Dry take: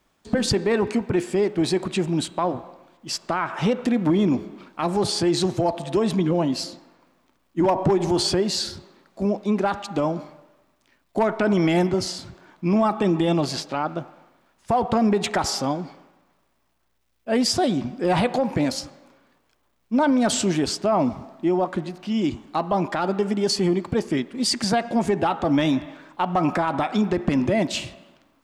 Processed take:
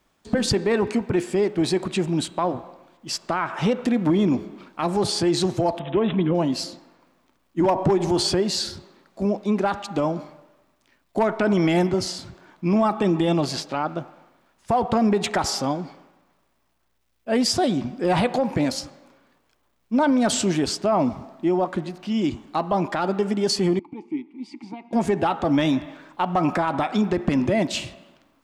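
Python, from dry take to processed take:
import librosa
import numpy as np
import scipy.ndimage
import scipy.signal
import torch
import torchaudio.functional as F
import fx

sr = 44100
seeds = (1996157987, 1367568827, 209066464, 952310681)

y = fx.resample_bad(x, sr, factor=6, down='none', up='filtered', at=(5.79, 6.35))
y = fx.vowel_filter(y, sr, vowel='u', at=(23.79, 24.93))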